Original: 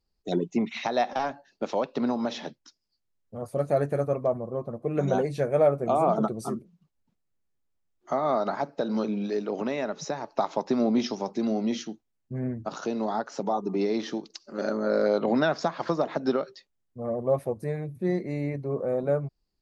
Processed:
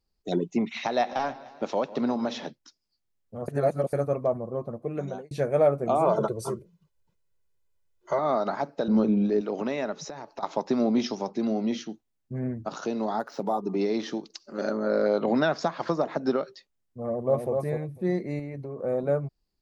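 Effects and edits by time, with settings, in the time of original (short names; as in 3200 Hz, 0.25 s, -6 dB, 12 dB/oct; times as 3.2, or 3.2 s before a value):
0.68–2.46 warbling echo 0.15 s, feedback 61%, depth 61 cents, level -18 dB
3.48–3.93 reverse
4.71–5.31 fade out
6.05–8.19 comb 2 ms, depth 94%
8.88–9.41 tilt -3 dB/oct
10–10.43 compressor, threshold -34 dBFS
11.27–11.9 air absorption 57 m
13.19–13.65 decimation joined by straight lines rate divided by 4×
14.71–15.18 air absorption 81 m
15.92–16.36 bell 3300 Hz -4.5 dB
17.03–17.52 echo throw 0.25 s, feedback 10%, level -4.5 dB
18.39–18.84 compressor, threshold -32 dBFS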